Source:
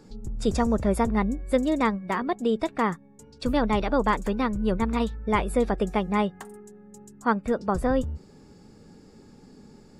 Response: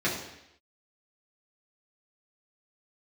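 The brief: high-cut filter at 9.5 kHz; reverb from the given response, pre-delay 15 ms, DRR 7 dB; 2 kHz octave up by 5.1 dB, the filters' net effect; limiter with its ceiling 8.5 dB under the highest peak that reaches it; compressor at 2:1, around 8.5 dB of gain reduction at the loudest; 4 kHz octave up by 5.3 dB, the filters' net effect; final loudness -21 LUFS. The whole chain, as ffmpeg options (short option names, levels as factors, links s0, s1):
-filter_complex "[0:a]lowpass=9500,equalizer=f=2000:t=o:g=5,equalizer=f=4000:t=o:g=5,acompressor=threshold=0.0251:ratio=2,alimiter=limit=0.0631:level=0:latency=1,asplit=2[s0][s1];[1:a]atrim=start_sample=2205,adelay=15[s2];[s1][s2]afir=irnorm=-1:irlink=0,volume=0.119[s3];[s0][s3]amix=inputs=2:normalize=0,volume=4.47"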